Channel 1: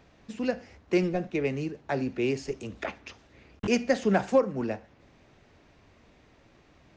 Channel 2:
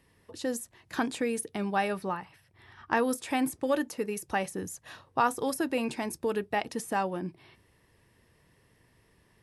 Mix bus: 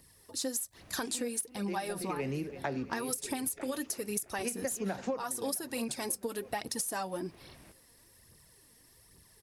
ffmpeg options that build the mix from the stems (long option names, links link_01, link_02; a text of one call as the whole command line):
ffmpeg -i stem1.wav -i stem2.wav -filter_complex "[0:a]adelay=750,volume=2dB,asplit=2[link_01][link_02];[link_02]volume=-20.5dB[link_03];[1:a]aexciter=amount=5.2:drive=3.1:freq=3900,aphaser=in_gain=1:out_gain=1:delay=4.4:decay=0.54:speed=1.2:type=triangular,volume=-2.5dB,asplit=2[link_04][link_05];[link_05]apad=whole_len=340359[link_06];[link_01][link_06]sidechaincompress=threshold=-41dB:ratio=8:attack=26:release=147[link_07];[link_03]aecho=0:1:331|662|993|1324|1655|1986|2317|2648|2979:1|0.57|0.325|0.185|0.106|0.0602|0.0343|0.0195|0.0111[link_08];[link_07][link_04][link_08]amix=inputs=3:normalize=0,acompressor=threshold=-31dB:ratio=12" out.wav